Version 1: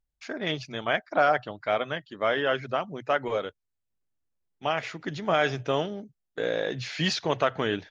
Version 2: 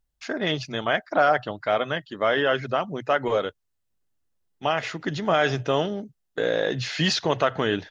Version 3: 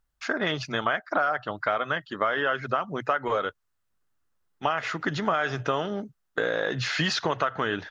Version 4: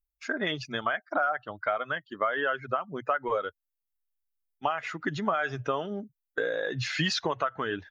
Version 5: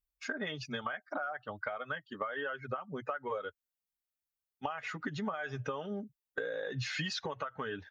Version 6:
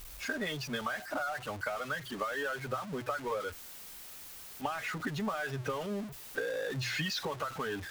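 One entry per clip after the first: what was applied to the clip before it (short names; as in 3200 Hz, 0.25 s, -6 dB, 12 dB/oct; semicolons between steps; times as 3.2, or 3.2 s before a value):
notch 2300 Hz, Q 13; in parallel at -0.5 dB: limiter -20.5 dBFS, peak gain reduction 10.5 dB
bell 1300 Hz +10 dB 1 oct; compressor 6:1, threshold -22 dBFS, peak gain reduction 12.5 dB
per-bin expansion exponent 1.5
compressor 5:1, threshold -33 dBFS, peak gain reduction 10.5 dB; notch comb 340 Hz
zero-crossing step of -39.5 dBFS; notches 60/120 Hz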